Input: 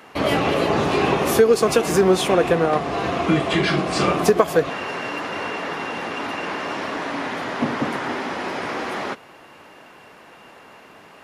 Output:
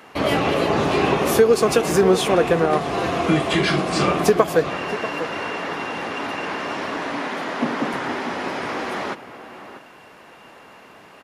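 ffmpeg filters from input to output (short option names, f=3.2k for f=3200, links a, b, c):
-filter_complex "[0:a]asettb=1/sr,asplit=3[a][b][c];[a]atrim=end=2.704[d];[b]atrim=start=2.7:end=3.9,asetpts=PTS-STARTPTS,afade=t=in:d=0.004:c=qsin,afade=t=out:st=1.196:d=0.004:c=qsin,highshelf=f=8.7k:g=9.5[e];[c]atrim=start=3.896[f];[d][e]acrossfade=d=0.004:c1=hsin:c2=qsin[g];[g][f]acrossfade=d=0.004:c1=qsin:c2=hsin,asettb=1/sr,asplit=3[h][i][j];[h]atrim=end=7.184[k];[i]atrim=start=7.18:end=7.94,asetpts=PTS-STARTPTS,afade=t=in:d=0.004:c=qsin,afade=t=out:st=0.756:d=0.004:c=qsin,highpass=f=160:w=0.5412,highpass=f=160:w=1.3066[l];[j]atrim=start=7.936[m];[k][l]acrossfade=d=0.004:c1=hsin:c2=qsin[n];[n][m]acrossfade=d=0.004:c1=qsin:c2=hsin,asplit=2[o][p];[p]adelay=641.4,volume=-12dB,highshelf=f=4k:g=-14.4[q];[o][q]amix=inputs=2:normalize=0"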